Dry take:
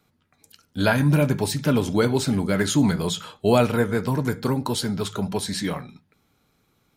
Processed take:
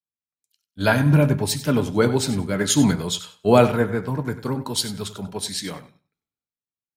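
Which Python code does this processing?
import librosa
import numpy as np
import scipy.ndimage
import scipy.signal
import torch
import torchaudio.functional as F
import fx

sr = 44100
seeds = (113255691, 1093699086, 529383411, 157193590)

p1 = x + fx.echo_feedback(x, sr, ms=96, feedback_pct=28, wet_db=-12, dry=0)
y = fx.band_widen(p1, sr, depth_pct=100)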